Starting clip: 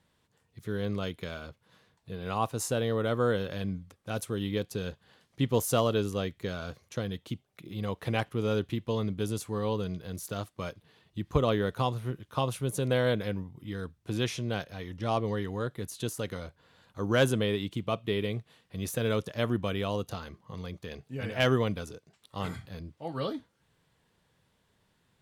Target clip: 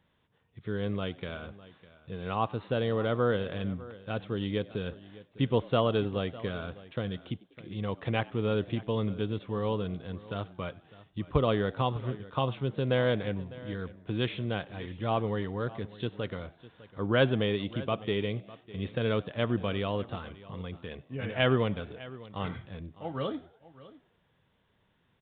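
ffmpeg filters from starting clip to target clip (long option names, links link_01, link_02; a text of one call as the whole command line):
ffmpeg -i in.wav -filter_complex "[0:a]asplit=2[link_01][link_02];[link_02]asplit=3[link_03][link_04][link_05];[link_03]adelay=96,afreqshift=81,volume=-23dB[link_06];[link_04]adelay=192,afreqshift=162,volume=-29dB[link_07];[link_05]adelay=288,afreqshift=243,volume=-35dB[link_08];[link_06][link_07][link_08]amix=inputs=3:normalize=0[link_09];[link_01][link_09]amix=inputs=2:normalize=0,aresample=8000,aresample=44100,asplit=2[link_10][link_11];[link_11]aecho=0:1:603:0.119[link_12];[link_10][link_12]amix=inputs=2:normalize=0" out.wav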